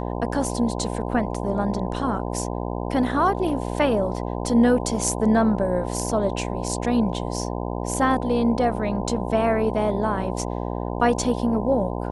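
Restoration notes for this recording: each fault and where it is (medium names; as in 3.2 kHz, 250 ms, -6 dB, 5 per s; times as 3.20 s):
buzz 60 Hz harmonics 17 -28 dBFS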